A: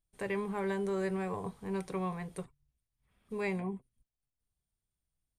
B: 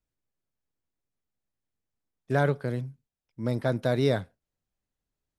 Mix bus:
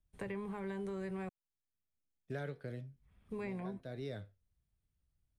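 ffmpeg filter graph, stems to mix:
-filter_complex "[0:a]equalizer=f=64:t=o:w=2.3:g=6,acrossover=split=310[s0][s1];[s1]acompressor=threshold=0.0141:ratio=6[s2];[s0][s2]amix=inputs=2:normalize=0,volume=0.794,asplit=3[s3][s4][s5];[s3]atrim=end=1.29,asetpts=PTS-STARTPTS,afade=t=out:st=1.286:d=0.004:c=hsin[s6];[s4]atrim=start=1.29:end=2.88,asetpts=PTS-STARTPTS,volume=0[s7];[s5]atrim=start=2.88,asetpts=PTS-STARTPTS,afade=t=in:d=0.004:c=hsin[s8];[s6][s7][s8]concat=n=3:v=0:a=1,asplit=2[s9][s10];[1:a]equalizer=f=990:t=o:w=0.62:g=-10.5,flanger=delay=9.7:depth=3.7:regen=74:speed=0.72:shape=sinusoidal,volume=0.531[s11];[s10]apad=whole_len=237696[s12];[s11][s12]sidechaincompress=threshold=0.00562:ratio=12:attack=40:release=860[s13];[s9][s13]amix=inputs=2:normalize=0,bass=f=250:g=5,treble=f=4000:g=-6,acrossover=split=340|1800[s14][s15][s16];[s14]acompressor=threshold=0.00562:ratio=4[s17];[s15]acompressor=threshold=0.00708:ratio=4[s18];[s16]acompressor=threshold=0.00282:ratio=4[s19];[s17][s18][s19]amix=inputs=3:normalize=0"

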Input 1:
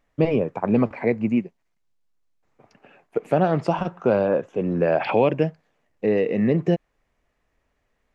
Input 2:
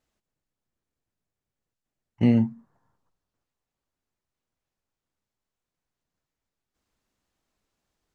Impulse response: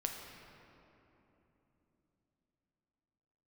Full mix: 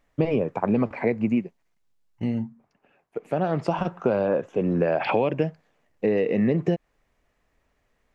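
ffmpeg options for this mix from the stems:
-filter_complex "[0:a]volume=1.19[s0];[1:a]volume=0.447,asplit=2[s1][s2];[s2]apad=whole_len=358998[s3];[s0][s3]sidechaincompress=threshold=0.00891:ratio=6:attack=5.4:release=1100[s4];[s4][s1]amix=inputs=2:normalize=0,acompressor=threshold=0.126:ratio=6"

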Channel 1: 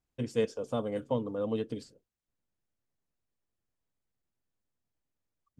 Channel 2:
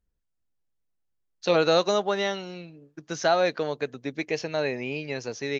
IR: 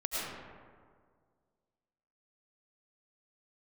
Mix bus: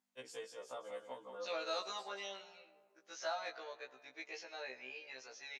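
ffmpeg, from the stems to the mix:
-filter_complex "[0:a]acompressor=threshold=0.0158:ratio=16,volume=1.41,asplit=2[s0][s1];[s1]volume=0.422[s2];[1:a]acontrast=73,volume=0.119,asplit=3[s3][s4][s5];[s4]volume=0.1[s6];[s5]apad=whole_len=246567[s7];[s0][s7]sidechaincompress=threshold=0.002:ratio=8:attack=16:release=109[s8];[2:a]atrim=start_sample=2205[s9];[s6][s9]afir=irnorm=-1:irlink=0[s10];[s2]aecho=0:1:179|358|537|716:1|0.29|0.0841|0.0244[s11];[s8][s3][s10][s11]amix=inputs=4:normalize=0,aeval=exprs='val(0)+0.000891*(sin(2*PI*50*n/s)+sin(2*PI*2*50*n/s)/2+sin(2*PI*3*50*n/s)/3+sin(2*PI*4*50*n/s)/4+sin(2*PI*5*50*n/s)/5)':c=same,highpass=760,afftfilt=real='re*1.73*eq(mod(b,3),0)':imag='im*1.73*eq(mod(b,3),0)':win_size=2048:overlap=0.75"

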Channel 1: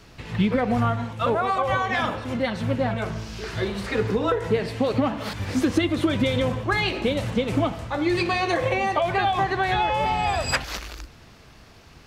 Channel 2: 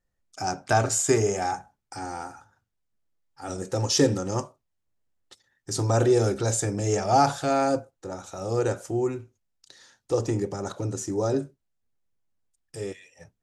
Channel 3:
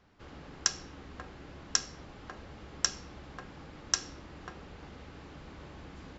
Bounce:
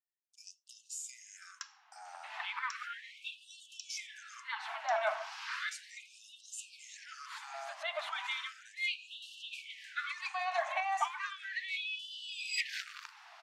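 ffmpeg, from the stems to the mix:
-filter_complex "[0:a]adelay=2050,volume=1.12[s0];[1:a]acompressor=threshold=0.0631:ratio=2.5,equalizer=f=160:w=1.1:g=6.5,volume=0.178,asplit=2[s1][s2];[2:a]acontrast=88,adelay=950,volume=0.158[s3];[s2]apad=whole_len=622645[s4];[s0][s4]sidechaincompress=threshold=0.00447:ratio=8:attack=11:release=352[s5];[s5][s3]amix=inputs=2:normalize=0,aemphasis=mode=reproduction:type=75kf,alimiter=limit=0.158:level=0:latency=1:release=140,volume=1[s6];[s1][s6]amix=inputs=2:normalize=0,afftfilt=real='re*gte(b*sr/1024,580*pow(2700/580,0.5+0.5*sin(2*PI*0.35*pts/sr)))':imag='im*gte(b*sr/1024,580*pow(2700/580,0.5+0.5*sin(2*PI*0.35*pts/sr)))':win_size=1024:overlap=0.75"

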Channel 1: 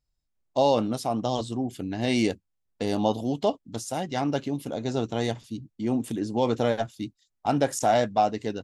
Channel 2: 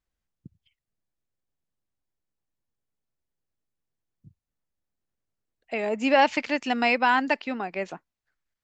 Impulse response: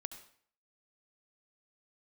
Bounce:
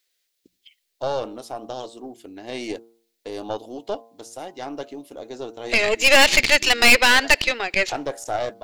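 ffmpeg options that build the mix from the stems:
-filter_complex "[0:a]bandreject=f=115:t=h:w=4,bandreject=f=230:t=h:w=4,bandreject=f=345:t=h:w=4,bandreject=f=460:t=h:w=4,bandreject=f=575:t=h:w=4,bandreject=f=690:t=h:w=4,bandreject=f=805:t=h:w=4,bandreject=f=920:t=h:w=4,bandreject=f=1035:t=h:w=4,bandreject=f=1150:t=h:w=4,bandreject=f=1265:t=h:w=4,bandreject=f=1380:t=h:w=4,bandreject=f=1495:t=h:w=4,adelay=450,volume=0.891[s0];[1:a]equalizer=f=125:t=o:w=1:g=-11,equalizer=f=250:t=o:w=1:g=3,equalizer=f=500:t=o:w=1:g=7,equalizer=f=1000:t=o:w=1:g=-4,equalizer=f=2000:t=o:w=1:g=8,equalizer=f=4000:t=o:w=1:g=10,crystalizer=i=8.5:c=0,bandreject=f=60:t=h:w=6,bandreject=f=120:t=h:w=6,bandreject=f=180:t=h:w=6,volume=1,asplit=3[s1][s2][s3];[s2]volume=0.158[s4];[s3]apad=whole_len=400755[s5];[s0][s5]sidechaincompress=threshold=0.251:ratio=8:attack=16:release=413[s6];[2:a]atrim=start_sample=2205[s7];[s4][s7]afir=irnorm=-1:irlink=0[s8];[s6][s1][s8]amix=inputs=3:normalize=0,lowshelf=f=240:t=q:w=1.5:g=-13.5,aeval=exprs='(tanh(2.82*val(0)+0.75)-tanh(0.75))/2.82':c=same"

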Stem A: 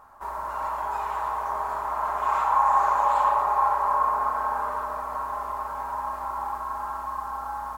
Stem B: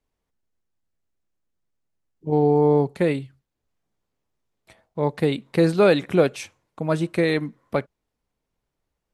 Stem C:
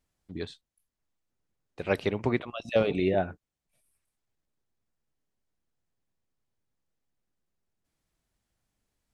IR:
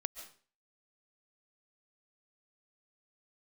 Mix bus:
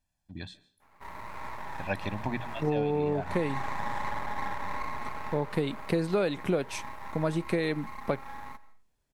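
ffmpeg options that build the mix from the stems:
-filter_complex "[0:a]adynamicequalizer=threshold=0.0178:dfrequency=1100:dqfactor=4.9:tfrequency=1100:tqfactor=4.9:attack=5:release=100:ratio=0.375:range=2:mode=cutabove:tftype=bell,aeval=exprs='max(val(0),0)':c=same,adelay=800,volume=0.335,asplit=2[s0][s1];[s1]volume=0.562[s2];[1:a]adelay=350,volume=0.794[s3];[2:a]bandreject=f=60:t=h:w=6,bandreject=f=120:t=h:w=6,bandreject=f=180:t=h:w=6,aecho=1:1:1.2:0.8,volume=0.447,asplit=3[s4][s5][s6];[s5]volume=0.422[s7];[s6]apad=whole_len=378216[s8];[s0][s8]sidechaincompress=threshold=0.0126:ratio=8:attack=38:release=150[s9];[3:a]atrim=start_sample=2205[s10];[s2][s7]amix=inputs=2:normalize=0[s11];[s11][s10]afir=irnorm=-1:irlink=0[s12];[s9][s3][s4][s12]amix=inputs=4:normalize=0,acompressor=threshold=0.0631:ratio=6"

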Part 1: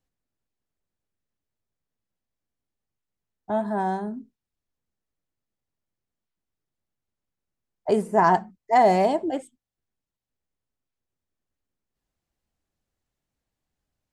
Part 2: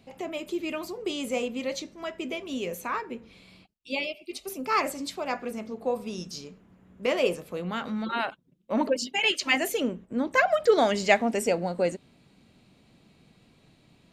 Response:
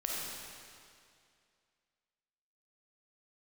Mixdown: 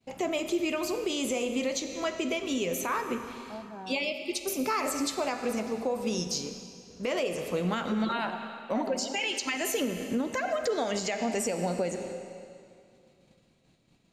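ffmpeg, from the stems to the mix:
-filter_complex "[0:a]lowpass=4300,volume=0.141[s0];[1:a]agate=range=0.0224:threshold=0.00355:ratio=3:detection=peak,equalizer=f=6600:t=o:w=0.57:g=6.5,acompressor=threshold=0.0501:ratio=6,volume=1.41,asplit=2[s1][s2];[s2]volume=0.316[s3];[2:a]atrim=start_sample=2205[s4];[s3][s4]afir=irnorm=-1:irlink=0[s5];[s0][s1][s5]amix=inputs=3:normalize=0,alimiter=limit=0.1:level=0:latency=1:release=185"

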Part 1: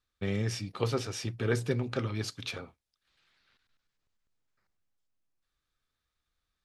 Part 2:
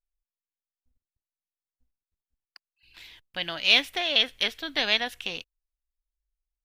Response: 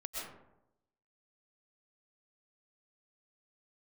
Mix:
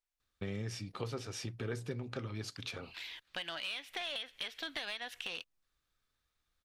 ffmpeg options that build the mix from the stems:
-filter_complex "[0:a]adelay=200,volume=1.06[s0];[1:a]acompressor=threshold=0.0398:ratio=16,asplit=2[s1][s2];[s2]highpass=f=720:p=1,volume=6.31,asoftclip=type=tanh:threshold=0.2[s3];[s1][s3]amix=inputs=2:normalize=0,lowpass=f=5000:p=1,volume=0.501,volume=0.501[s4];[s0][s4]amix=inputs=2:normalize=0,acompressor=threshold=0.00891:ratio=2.5"

